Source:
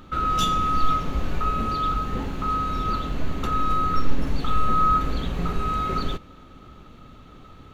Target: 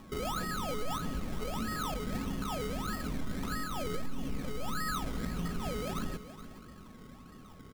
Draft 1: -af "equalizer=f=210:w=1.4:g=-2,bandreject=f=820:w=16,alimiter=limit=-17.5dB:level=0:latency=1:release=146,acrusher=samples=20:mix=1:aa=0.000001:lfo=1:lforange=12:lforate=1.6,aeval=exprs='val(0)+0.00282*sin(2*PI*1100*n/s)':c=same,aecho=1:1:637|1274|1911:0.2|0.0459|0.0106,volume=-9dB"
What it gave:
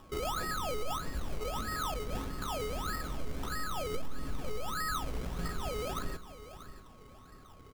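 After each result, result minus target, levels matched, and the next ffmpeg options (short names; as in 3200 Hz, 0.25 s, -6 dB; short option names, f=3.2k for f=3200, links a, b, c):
echo 0.213 s late; 250 Hz band -6.0 dB
-af "equalizer=f=210:w=1.4:g=-2,bandreject=f=820:w=16,alimiter=limit=-17.5dB:level=0:latency=1:release=146,acrusher=samples=20:mix=1:aa=0.000001:lfo=1:lforange=12:lforate=1.6,aeval=exprs='val(0)+0.00282*sin(2*PI*1100*n/s)':c=same,aecho=1:1:424|848|1272:0.2|0.0459|0.0106,volume=-9dB"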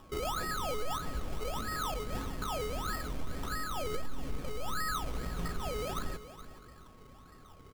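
250 Hz band -6.0 dB
-af "equalizer=f=210:w=1.4:g=9,bandreject=f=820:w=16,alimiter=limit=-17.5dB:level=0:latency=1:release=146,acrusher=samples=20:mix=1:aa=0.000001:lfo=1:lforange=12:lforate=1.6,aeval=exprs='val(0)+0.00282*sin(2*PI*1100*n/s)':c=same,aecho=1:1:424|848|1272:0.2|0.0459|0.0106,volume=-9dB"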